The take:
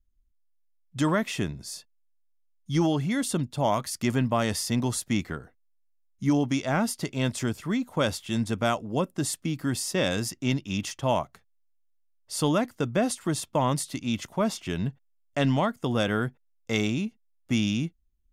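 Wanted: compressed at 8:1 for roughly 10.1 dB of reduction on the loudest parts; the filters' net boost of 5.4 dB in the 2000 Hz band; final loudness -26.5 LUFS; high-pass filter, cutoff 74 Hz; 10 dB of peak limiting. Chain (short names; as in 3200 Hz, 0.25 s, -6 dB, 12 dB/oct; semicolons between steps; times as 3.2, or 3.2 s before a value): HPF 74 Hz; bell 2000 Hz +7 dB; compressor 8:1, threshold -29 dBFS; gain +10 dB; limiter -14.5 dBFS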